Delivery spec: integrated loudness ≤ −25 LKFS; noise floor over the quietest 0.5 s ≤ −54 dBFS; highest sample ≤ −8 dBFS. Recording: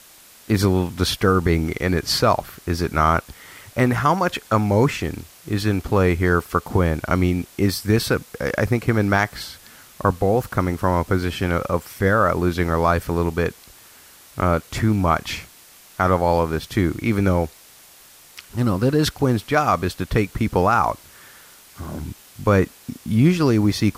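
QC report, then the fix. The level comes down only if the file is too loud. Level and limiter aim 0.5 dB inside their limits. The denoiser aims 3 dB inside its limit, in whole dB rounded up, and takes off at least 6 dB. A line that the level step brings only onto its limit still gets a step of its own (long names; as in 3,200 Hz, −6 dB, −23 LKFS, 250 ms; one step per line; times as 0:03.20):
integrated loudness −20.5 LKFS: out of spec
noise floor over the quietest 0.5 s −48 dBFS: out of spec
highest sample −5.0 dBFS: out of spec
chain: broadband denoise 6 dB, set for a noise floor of −48 dBFS
level −5 dB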